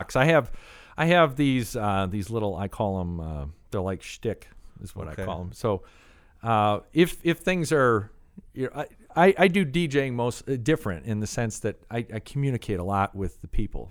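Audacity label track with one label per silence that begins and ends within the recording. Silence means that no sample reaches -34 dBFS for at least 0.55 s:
5.780000	6.430000	silence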